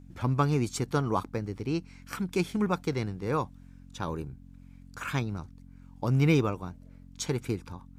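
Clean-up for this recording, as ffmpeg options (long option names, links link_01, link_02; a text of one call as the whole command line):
ffmpeg -i in.wav -af "bandreject=frequency=45:width_type=h:width=4,bandreject=frequency=90:width_type=h:width=4,bandreject=frequency=135:width_type=h:width=4,bandreject=frequency=180:width_type=h:width=4,bandreject=frequency=225:width_type=h:width=4,bandreject=frequency=270:width_type=h:width=4" out.wav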